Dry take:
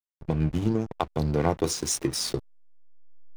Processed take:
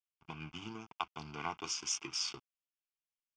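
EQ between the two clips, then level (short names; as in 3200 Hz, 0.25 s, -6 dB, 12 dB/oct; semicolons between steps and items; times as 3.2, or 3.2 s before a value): band-pass 3400 Hz, Q 0.85; air absorption 99 m; fixed phaser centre 2700 Hz, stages 8; +3.5 dB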